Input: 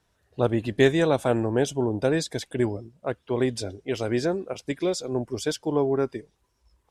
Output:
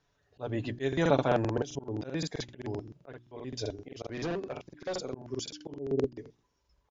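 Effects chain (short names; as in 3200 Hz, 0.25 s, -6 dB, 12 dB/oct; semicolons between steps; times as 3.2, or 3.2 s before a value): 5.72–6.12 inverse Chebyshev low-pass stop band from 1100 Hz, stop band 40 dB; notches 60/120/180/240/300/360 Hz; comb 7 ms, depth 43%; auto swell 0.224 s; 4.08–4.94 hard clip -26.5 dBFS, distortion -17 dB; crackling interface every 0.13 s, samples 2048, repeat, from 0.88; gain -3.5 dB; MP3 80 kbps 16000 Hz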